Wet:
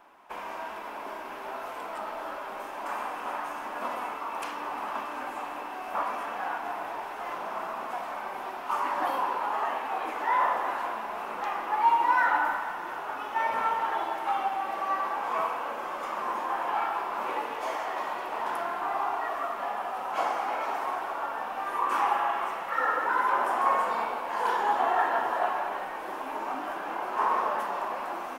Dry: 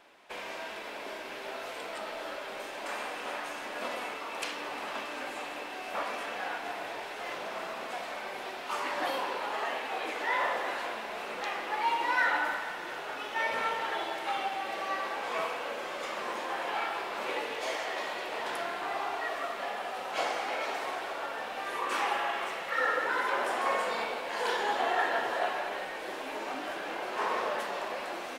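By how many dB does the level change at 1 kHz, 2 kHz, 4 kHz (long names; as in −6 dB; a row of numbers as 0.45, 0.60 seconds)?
+6.0, −1.0, −6.5 decibels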